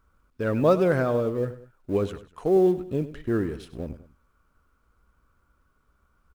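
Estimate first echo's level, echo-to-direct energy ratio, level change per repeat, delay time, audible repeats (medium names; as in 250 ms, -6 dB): -14.5 dB, -14.0 dB, -7.5 dB, 99 ms, 2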